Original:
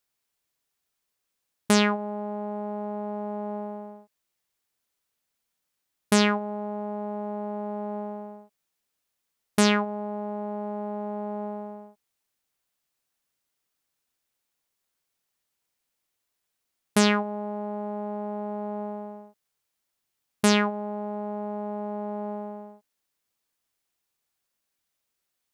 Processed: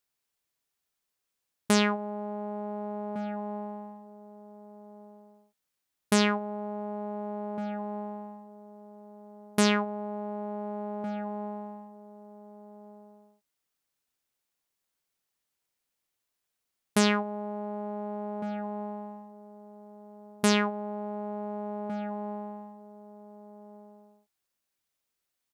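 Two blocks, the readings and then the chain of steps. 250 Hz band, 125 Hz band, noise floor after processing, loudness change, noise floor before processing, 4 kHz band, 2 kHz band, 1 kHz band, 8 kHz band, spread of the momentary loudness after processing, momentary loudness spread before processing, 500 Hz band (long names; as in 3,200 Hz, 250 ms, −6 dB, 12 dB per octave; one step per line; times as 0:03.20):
−2.5 dB, −2.5 dB, −84 dBFS, −3.0 dB, −81 dBFS, −3.0 dB, −3.0 dB, −3.0 dB, −3.0 dB, 25 LU, 16 LU, −3.0 dB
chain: slap from a distant wall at 250 metres, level −13 dB
level −3 dB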